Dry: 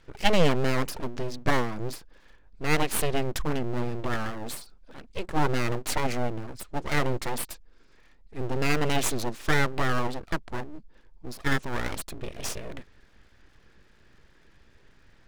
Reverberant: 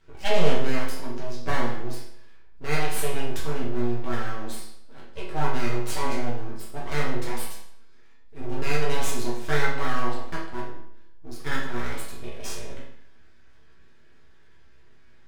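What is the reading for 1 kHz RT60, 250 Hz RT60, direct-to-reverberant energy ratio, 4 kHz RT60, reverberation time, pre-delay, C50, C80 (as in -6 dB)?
0.70 s, 0.70 s, -6.0 dB, 0.65 s, 0.70 s, 5 ms, 3.5 dB, 7.5 dB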